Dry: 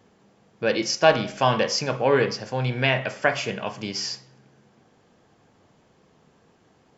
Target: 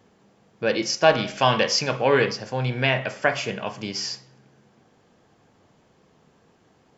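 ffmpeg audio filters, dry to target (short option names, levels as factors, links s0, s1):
-filter_complex "[0:a]asettb=1/sr,asplit=3[s0][s1][s2];[s0]atrim=end=1.184[s3];[s1]atrim=start=1.18:end=2.32,asetpts=PTS-STARTPTS,afade=t=in:d=0.004:c=qsin,afade=t=out:st=1.136:d=0.004:c=qsin,equalizer=f=3100:t=o:w=2:g=5[s4];[s2]atrim=start=2.316[s5];[s3][s4]acrossfade=d=0.004:c1=hsin:c2=qsin[s6];[s6][s5]acrossfade=d=0.004:c1=qsin:c2=hsin"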